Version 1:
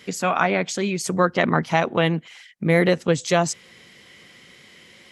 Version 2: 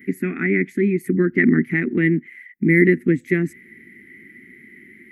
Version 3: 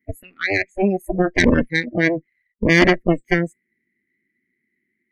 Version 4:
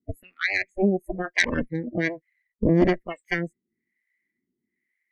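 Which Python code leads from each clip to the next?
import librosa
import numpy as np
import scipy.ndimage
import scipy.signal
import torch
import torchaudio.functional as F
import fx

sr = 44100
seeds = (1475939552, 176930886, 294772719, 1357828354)

y1 = fx.curve_eq(x, sr, hz=(150.0, 250.0, 380.0, 570.0, 1000.0, 2000.0, 3000.0, 5200.0, 7500.0, 13000.0), db=(0, 13, 8, -25, -29, 10, -20, -29, -23, 7))
y1 = y1 * librosa.db_to_amplitude(-1.0)
y2 = fx.cheby_harmonics(y1, sr, harmonics=(6,), levels_db=(-11,), full_scale_db=-1.0)
y2 = fx.noise_reduce_blind(y2, sr, reduce_db=27)
y2 = y2 * librosa.db_to_amplitude(-1.0)
y3 = fx.harmonic_tremolo(y2, sr, hz=1.1, depth_pct=100, crossover_hz=800.0)
y3 = y3 * librosa.db_to_amplitude(-2.0)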